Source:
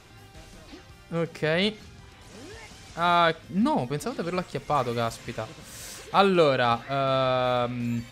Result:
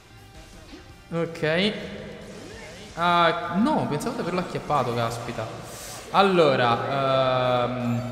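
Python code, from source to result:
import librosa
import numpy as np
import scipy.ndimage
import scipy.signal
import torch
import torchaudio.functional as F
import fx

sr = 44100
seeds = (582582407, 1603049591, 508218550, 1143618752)

p1 = x + fx.echo_single(x, sr, ms=1182, db=-22.5, dry=0)
p2 = fx.rev_plate(p1, sr, seeds[0], rt60_s=3.3, hf_ratio=0.5, predelay_ms=0, drr_db=8.5)
y = p2 * 10.0 ** (1.5 / 20.0)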